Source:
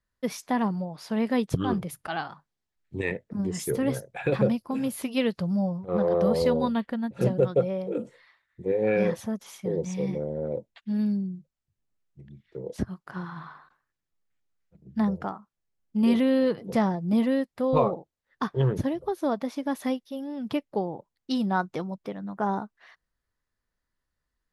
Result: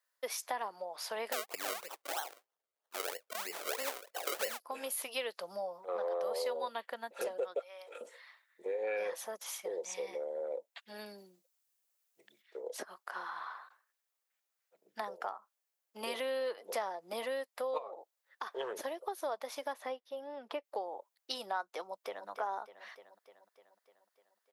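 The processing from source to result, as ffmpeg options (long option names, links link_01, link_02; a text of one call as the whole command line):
ffmpeg -i in.wav -filter_complex "[0:a]asettb=1/sr,asplit=3[link_01][link_02][link_03];[link_01]atrim=end=1.324[link_04];[link_02]atrim=start=1.32:end=4.6,asetpts=PTS-STARTPTS,afade=type=in:duration=0.004:curve=qsin,afade=type=out:start_time=3.276:duration=0.004:curve=qsin,acrusher=samples=35:mix=1:aa=0.000001:lfo=1:lforange=35:lforate=3.1[link_05];[link_03]atrim=start=4.596[link_06];[link_04][link_05]acrossfade=duration=0.004:curve1=hsin:curve2=qsin[link_07];[link_07][link_06]acrossfade=duration=0.004:curve1=qsin:curve2=hsin,asettb=1/sr,asplit=3[link_08][link_09][link_10];[link_08]atrim=end=7.594[link_11];[link_09]atrim=start=7.59:end=8.01,asetpts=PTS-STARTPTS,afade=type=in:duration=0.004:curve=qsin,afade=type=out:start_time=0.416:duration=0.004:curve=qsin,highpass=1300[link_12];[link_10]atrim=start=8.006[link_13];[link_11][link_12]acrossfade=duration=0.004:curve1=hsin:curve2=qsin[link_14];[link_14][link_13]acrossfade=duration=0.004:curve1=qsin:curve2=hsin,asettb=1/sr,asplit=3[link_15][link_16][link_17];[link_15]atrim=end=11.184[link_18];[link_16]atrim=start=11.18:end=12.42,asetpts=PTS-STARTPTS,afade=type=in:duration=0.004:curve=qsin,afade=type=out:start_time=1.236:duration=0.004:curve=qsin,highshelf=frequency=3400:gain=7.5[link_19];[link_17]atrim=start=12.416[link_20];[link_18][link_19]acrossfade=duration=0.004:curve1=hsin:curve2=qsin[link_21];[link_21][link_20]acrossfade=duration=0.004:curve1=qsin:curve2=hsin,asplit=3[link_22][link_23][link_24];[link_22]afade=type=out:start_time=17.77:duration=0.02[link_25];[link_23]acompressor=threshold=-35dB:ratio=3:attack=3.2:release=140:knee=1:detection=peak,afade=type=in:start_time=17.77:duration=0.02,afade=type=out:start_time=18.46:duration=0.02[link_26];[link_24]afade=type=in:start_time=18.46:duration=0.02[link_27];[link_25][link_26][link_27]amix=inputs=3:normalize=0,asplit=3[link_28][link_29][link_30];[link_28]afade=type=out:start_time=19.72:duration=0.02[link_31];[link_29]lowpass=frequency=1400:poles=1,afade=type=in:start_time=19.72:duration=0.02,afade=type=out:start_time=20.63:duration=0.02[link_32];[link_30]afade=type=in:start_time=20.63:duration=0.02[link_33];[link_31][link_32][link_33]amix=inputs=3:normalize=0,asplit=2[link_34][link_35];[link_35]afade=type=in:start_time=21.82:duration=0.01,afade=type=out:start_time=22.28:duration=0.01,aecho=0:1:300|600|900|1200|1500|1800|2100|2400|2700:0.316228|0.205548|0.133606|0.0868441|0.0564486|0.0366916|0.0238495|0.0155022|0.0100764[link_36];[link_34][link_36]amix=inputs=2:normalize=0,highpass=frequency=520:width=0.5412,highpass=frequency=520:width=1.3066,highshelf=frequency=9000:gain=9.5,acompressor=threshold=-39dB:ratio=2.5,volume=1.5dB" out.wav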